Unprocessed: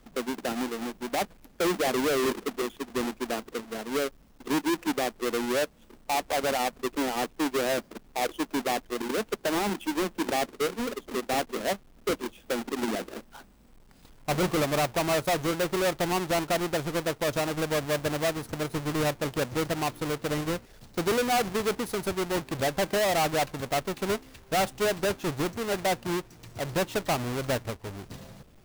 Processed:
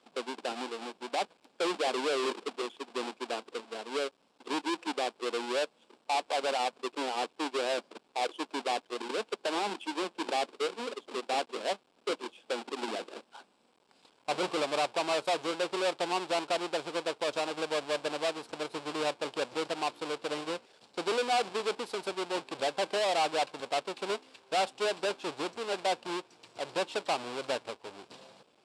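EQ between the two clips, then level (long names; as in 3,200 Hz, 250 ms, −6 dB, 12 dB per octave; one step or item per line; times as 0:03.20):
loudspeaker in its box 480–7,700 Hz, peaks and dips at 640 Hz −3 dB, 1,300 Hz −4 dB, 1,900 Hz −9 dB, 6,300 Hz −10 dB
0.0 dB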